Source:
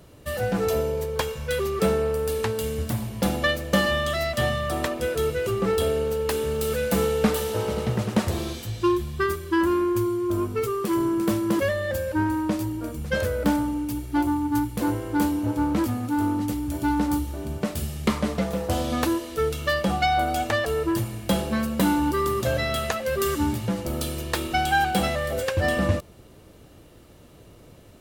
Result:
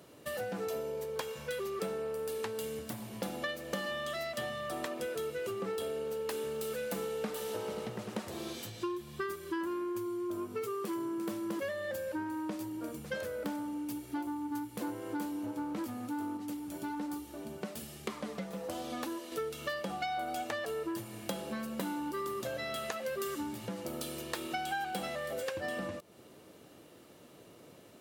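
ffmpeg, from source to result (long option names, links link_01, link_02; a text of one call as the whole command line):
ffmpeg -i in.wav -filter_complex "[0:a]asettb=1/sr,asplit=3[link_01][link_02][link_03];[link_01]atrim=end=16.374[link_04];[link_02]atrim=start=16.37:end=19.32,asetpts=PTS-STARTPTS,afade=type=in:duration=0.004:curve=qsin,afade=type=out:start_time=2.946:duration=0.004:curve=qsin,flanger=delay=2.5:depth=2.9:regen=56:speed=1.2:shape=sinusoidal[link_05];[link_03]atrim=start=19.316[link_06];[link_04][link_05]acrossfade=duration=0.004:curve1=hsin:curve2=qsin[link_07];[link_07][link_06]acrossfade=duration=0.004:curve1=qsin:curve2=hsin,acompressor=threshold=-31dB:ratio=4,highpass=200,volume=-3.5dB" out.wav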